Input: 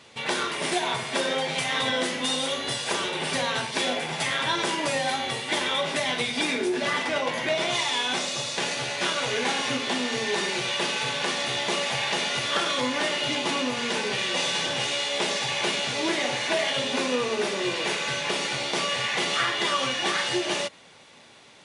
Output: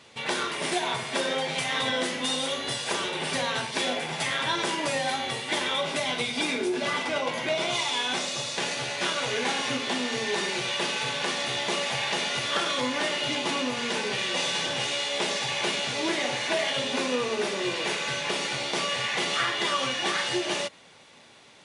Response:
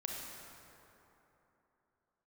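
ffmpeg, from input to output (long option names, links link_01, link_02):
-filter_complex "[0:a]asettb=1/sr,asplit=3[link_01][link_02][link_03];[link_01]atrim=end=5.754[link_04];[link_02]atrim=start=5.75:end=7.97,asetpts=PTS-STARTPTS,afade=type=in:duration=0.004:curve=qsin,afade=type=out:start_time=2.216:duration=0.004:curve=qsin,bandreject=frequency=1800:width=9.8[link_05];[link_03]atrim=start=7.966[link_06];[link_04][link_05]acrossfade=duration=0.004:curve1=hsin:curve2=qsin[link_07];[link_07][link_06]acrossfade=duration=0.004:curve1=qsin:curve2=hsin,volume=-1.5dB"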